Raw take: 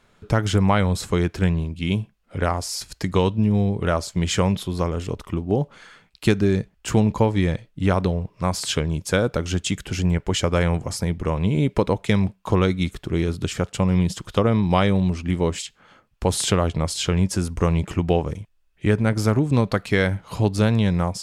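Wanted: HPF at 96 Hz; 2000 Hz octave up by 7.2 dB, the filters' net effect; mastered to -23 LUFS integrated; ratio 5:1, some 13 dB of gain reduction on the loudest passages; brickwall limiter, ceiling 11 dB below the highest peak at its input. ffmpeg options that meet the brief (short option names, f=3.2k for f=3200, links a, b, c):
-af "highpass=96,equalizer=f=2k:t=o:g=9,acompressor=threshold=-27dB:ratio=5,volume=10.5dB,alimiter=limit=-9.5dB:level=0:latency=1"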